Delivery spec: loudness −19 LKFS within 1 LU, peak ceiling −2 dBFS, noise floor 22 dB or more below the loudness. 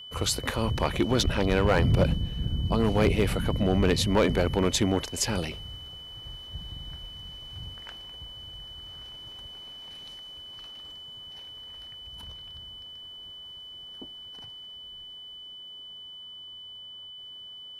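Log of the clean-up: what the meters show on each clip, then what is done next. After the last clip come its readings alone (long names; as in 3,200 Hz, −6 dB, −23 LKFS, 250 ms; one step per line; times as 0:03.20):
share of clipped samples 0.3%; peaks flattened at −14.5 dBFS; interfering tone 3,000 Hz; level of the tone −41 dBFS; integrated loudness −26.5 LKFS; sample peak −14.5 dBFS; target loudness −19.0 LKFS
→ clipped peaks rebuilt −14.5 dBFS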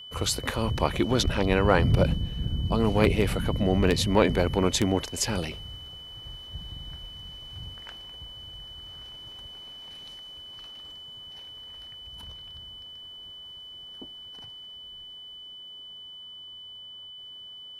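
share of clipped samples 0.0%; interfering tone 3,000 Hz; level of the tone −41 dBFS
→ notch filter 3,000 Hz, Q 30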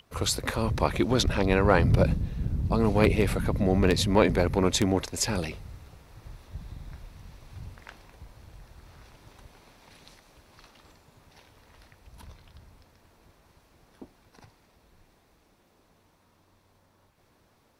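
interfering tone none found; integrated loudness −25.0 LKFS; sample peak −5.5 dBFS; target loudness −19.0 LKFS
→ level +6 dB
brickwall limiter −2 dBFS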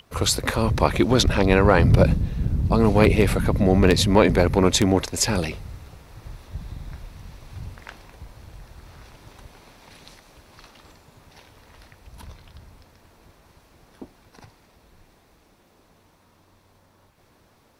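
integrated loudness −19.5 LKFS; sample peak −2.0 dBFS; background noise floor −59 dBFS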